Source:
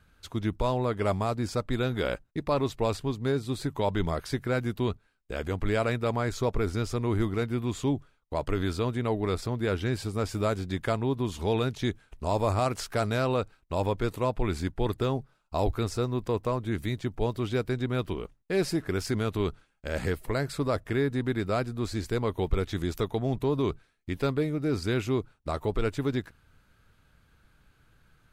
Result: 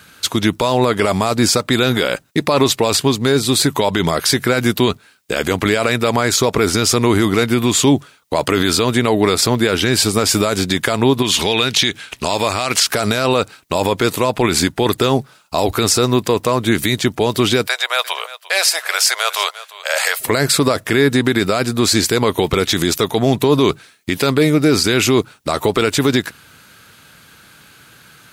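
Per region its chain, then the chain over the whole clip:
11.22–12.87 s: peaking EQ 2.8 kHz +9 dB 2.1 oct + compression 4:1, threshold -31 dBFS
17.67–20.20 s: steep high-pass 570 Hz 48 dB/octave + delay 349 ms -18.5 dB
whole clip: high-pass 150 Hz 12 dB/octave; treble shelf 2.2 kHz +11.5 dB; loudness maximiser +20 dB; trim -2.5 dB

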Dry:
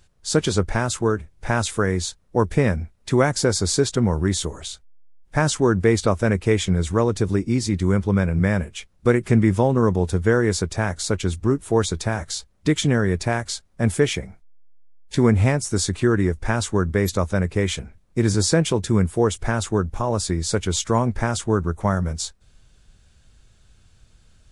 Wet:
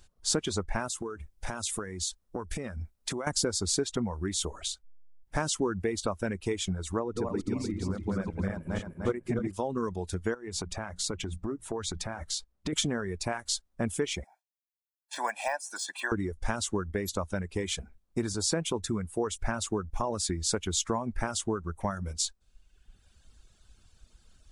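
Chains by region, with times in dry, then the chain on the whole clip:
0.88–3.27 s: treble shelf 5.2 kHz +6 dB + compression 16:1, threshold -26 dBFS
6.99–9.53 s: backward echo that repeats 150 ms, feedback 62%, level -2 dB + treble shelf 2.3 kHz -9.5 dB
10.34–12.73 s: treble shelf 4.2 kHz -6 dB + hum notches 60/120/180 Hz + compression, threshold -25 dBFS
14.24–16.12 s: high-pass 560 Hz 24 dB/octave + de-esser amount 90% + comb 1.2 ms, depth 95%
whole clip: compression 4:1, threshold -23 dBFS; reverb removal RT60 1.2 s; graphic EQ 125/500/2000 Hz -9/-3/-4 dB

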